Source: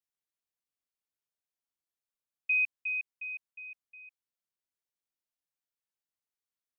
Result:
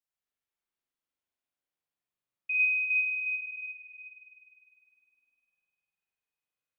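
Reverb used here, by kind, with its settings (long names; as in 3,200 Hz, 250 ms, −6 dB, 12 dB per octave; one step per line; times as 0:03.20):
spring reverb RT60 2.8 s, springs 41 ms, chirp 40 ms, DRR −6.5 dB
level −4 dB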